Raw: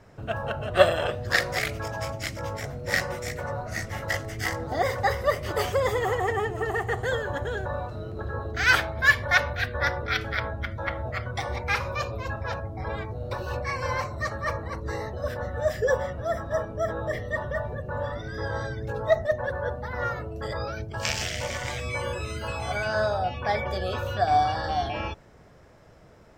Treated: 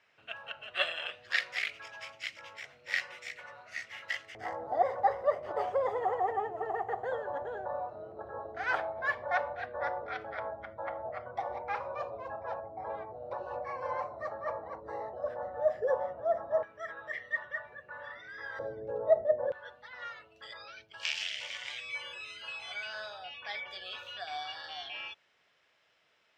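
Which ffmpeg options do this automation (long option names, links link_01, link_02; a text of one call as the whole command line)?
ffmpeg -i in.wav -af "asetnsamples=nb_out_samples=441:pad=0,asendcmd='4.35 bandpass f 730;16.63 bandpass f 2100;18.59 bandpass f 530;19.52 bandpass f 3000',bandpass=frequency=2700:width_type=q:width=2.4:csg=0" out.wav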